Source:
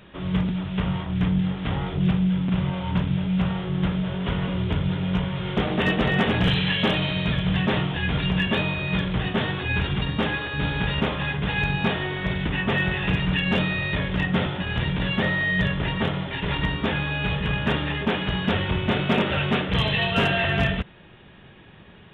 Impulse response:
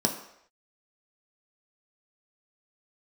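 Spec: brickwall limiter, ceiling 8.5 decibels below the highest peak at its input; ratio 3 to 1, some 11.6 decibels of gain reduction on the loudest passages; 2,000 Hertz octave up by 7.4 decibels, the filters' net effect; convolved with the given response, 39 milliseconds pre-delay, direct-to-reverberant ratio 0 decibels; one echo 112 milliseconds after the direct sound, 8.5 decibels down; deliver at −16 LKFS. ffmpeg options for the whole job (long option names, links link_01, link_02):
-filter_complex "[0:a]equalizer=frequency=2000:width_type=o:gain=9,acompressor=threshold=-31dB:ratio=3,alimiter=level_in=2.5dB:limit=-24dB:level=0:latency=1,volume=-2.5dB,aecho=1:1:112:0.376,asplit=2[link_01][link_02];[1:a]atrim=start_sample=2205,adelay=39[link_03];[link_02][link_03]afir=irnorm=-1:irlink=0,volume=-9.5dB[link_04];[link_01][link_04]amix=inputs=2:normalize=0,volume=12dB"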